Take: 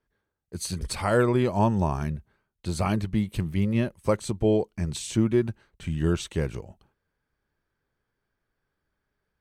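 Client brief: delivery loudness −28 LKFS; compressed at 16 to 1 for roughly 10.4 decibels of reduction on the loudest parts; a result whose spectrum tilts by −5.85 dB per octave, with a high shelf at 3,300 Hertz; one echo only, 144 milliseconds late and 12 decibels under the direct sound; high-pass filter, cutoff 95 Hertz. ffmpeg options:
ffmpeg -i in.wav -af "highpass=95,highshelf=frequency=3300:gain=-5,acompressor=threshold=-27dB:ratio=16,aecho=1:1:144:0.251,volume=6dB" out.wav

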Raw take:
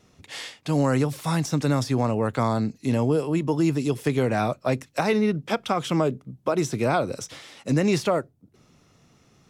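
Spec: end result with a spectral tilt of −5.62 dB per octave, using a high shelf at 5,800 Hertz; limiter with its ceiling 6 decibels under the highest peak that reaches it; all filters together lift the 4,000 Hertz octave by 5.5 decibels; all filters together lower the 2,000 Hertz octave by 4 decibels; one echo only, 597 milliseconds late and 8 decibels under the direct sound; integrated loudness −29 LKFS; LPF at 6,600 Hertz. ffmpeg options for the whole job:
ffmpeg -i in.wav -af "lowpass=6600,equalizer=frequency=2000:width_type=o:gain=-8.5,equalizer=frequency=4000:width_type=o:gain=7.5,highshelf=frequency=5800:gain=6.5,alimiter=limit=-16dB:level=0:latency=1,aecho=1:1:597:0.398,volume=-2.5dB" out.wav

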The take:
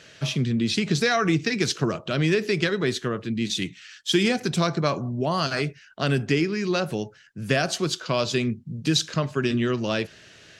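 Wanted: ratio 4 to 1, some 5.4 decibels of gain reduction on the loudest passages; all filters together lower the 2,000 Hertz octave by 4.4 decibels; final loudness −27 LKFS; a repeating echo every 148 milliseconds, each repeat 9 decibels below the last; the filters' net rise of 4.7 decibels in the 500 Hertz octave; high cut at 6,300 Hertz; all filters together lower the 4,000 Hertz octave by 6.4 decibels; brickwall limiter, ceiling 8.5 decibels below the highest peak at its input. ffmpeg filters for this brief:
ffmpeg -i in.wav -af "lowpass=6300,equalizer=frequency=500:width_type=o:gain=6.5,equalizer=frequency=2000:width_type=o:gain=-4.5,equalizer=frequency=4000:width_type=o:gain=-6,acompressor=threshold=-20dB:ratio=4,alimiter=limit=-17dB:level=0:latency=1,aecho=1:1:148|296|444|592:0.355|0.124|0.0435|0.0152,volume=0.5dB" out.wav

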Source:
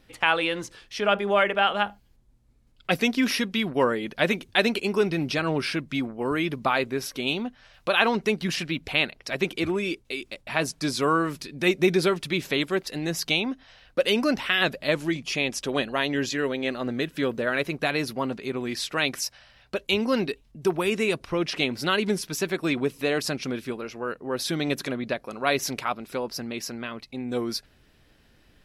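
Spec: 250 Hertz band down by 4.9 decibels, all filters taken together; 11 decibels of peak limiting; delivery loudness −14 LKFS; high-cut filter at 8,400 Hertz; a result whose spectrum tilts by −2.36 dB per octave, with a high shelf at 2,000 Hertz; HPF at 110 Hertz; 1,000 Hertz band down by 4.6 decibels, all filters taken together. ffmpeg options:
ffmpeg -i in.wav -af "highpass=110,lowpass=8400,equalizer=frequency=250:width_type=o:gain=-6,equalizer=frequency=1000:width_type=o:gain=-8.5,highshelf=frequency=2000:gain=8,volume=13.5dB,alimiter=limit=0dB:level=0:latency=1" out.wav

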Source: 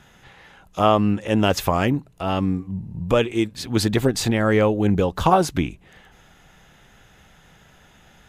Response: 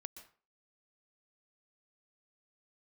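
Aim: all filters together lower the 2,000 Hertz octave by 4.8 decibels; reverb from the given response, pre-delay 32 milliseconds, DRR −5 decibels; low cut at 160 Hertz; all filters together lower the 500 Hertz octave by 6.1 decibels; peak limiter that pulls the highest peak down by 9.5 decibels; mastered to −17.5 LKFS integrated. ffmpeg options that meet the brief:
-filter_complex "[0:a]highpass=160,equalizer=frequency=500:width_type=o:gain=-7.5,equalizer=frequency=2000:width_type=o:gain=-6,alimiter=limit=-15.5dB:level=0:latency=1,asplit=2[link_01][link_02];[1:a]atrim=start_sample=2205,adelay=32[link_03];[link_02][link_03]afir=irnorm=-1:irlink=0,volume=10dB[link_04];[link_01][link_04]amix=inputs=2:normalize=0,volume=4dB"

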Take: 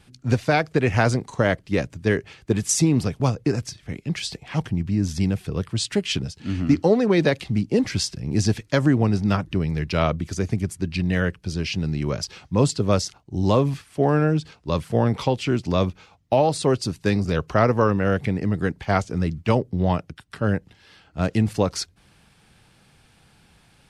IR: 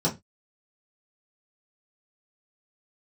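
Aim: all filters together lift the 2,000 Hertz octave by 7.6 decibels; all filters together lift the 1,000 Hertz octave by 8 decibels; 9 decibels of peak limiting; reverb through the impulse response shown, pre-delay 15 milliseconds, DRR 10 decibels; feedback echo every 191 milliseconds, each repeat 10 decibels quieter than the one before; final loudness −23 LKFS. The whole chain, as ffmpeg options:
-filter_complex "[0:a]equalizer=frequency=1000:width_type=o:gain=9,equalizer=frequency=2000:width_type=o:gain=6.5,alimiter=limit=-8.5dB:level=0:latency=1,aecho=1:1:191|382|573|764:0.316|0.101|0.0324|0.0104,asplit=2[link_01][link_02];[1:a]atrim=start_sample=2205,adelay=15[link_03];[link_02][link_03]afir=irnorm=-1:irlink=0,volume=-21dB[link_04];[link_01][link_04]amix=inputs=2:normalize=0,volume=-2.5dB"

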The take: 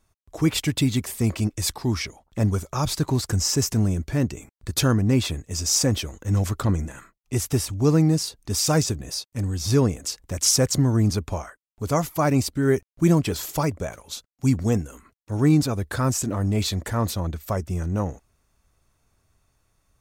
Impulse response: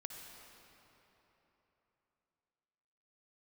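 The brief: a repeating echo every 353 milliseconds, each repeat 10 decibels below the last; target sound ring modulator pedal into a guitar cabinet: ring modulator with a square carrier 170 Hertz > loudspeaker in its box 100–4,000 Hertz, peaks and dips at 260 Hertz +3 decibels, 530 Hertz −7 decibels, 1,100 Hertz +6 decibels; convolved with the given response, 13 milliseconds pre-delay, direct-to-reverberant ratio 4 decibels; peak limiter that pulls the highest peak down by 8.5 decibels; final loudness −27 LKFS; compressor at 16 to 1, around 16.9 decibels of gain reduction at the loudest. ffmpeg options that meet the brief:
-filter_complex "[0:a]acompressor=threshold=-31dB:ratio=16,alimiter=level_in=4dB:limit=-24dB:level=0:latency=1,volume=-4dB,aecho=1:1:353|706|1059|1412:0.316|0.101|0.0324|0.0104,asplit=2[link_01][link_02];[1:a]atrim=start_sample=2205,adelay=13[link_03];[link_02][link_03]afir=irnorm=-1:irlink=0,volume=-1dB[link_04];[link_01][link_04]amix=inputs=2:normalize=0,aeval=exprs='val(0)*sgn(sin(2*PI*170*n/s))':channel_layout=same,highpass=100,equalizer=frequency=260:width_type=q:width=4:gain=3,equalizer=frequency=530:width_type=q:width=4:gain=-7,equalizer=frequency=1100:width_type=q:width=4:gain=6,lowpass=frequency=4000:width=0.5412,lowpass=frequency=4000:width=1.3066,volume=10dB"

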